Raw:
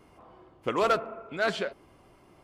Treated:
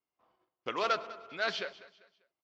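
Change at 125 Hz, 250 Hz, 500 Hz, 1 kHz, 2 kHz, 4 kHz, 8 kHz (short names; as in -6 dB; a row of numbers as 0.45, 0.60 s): -13.5, -11.0, -8.0, -5.0, -3.0, 0.0, -5.0 dB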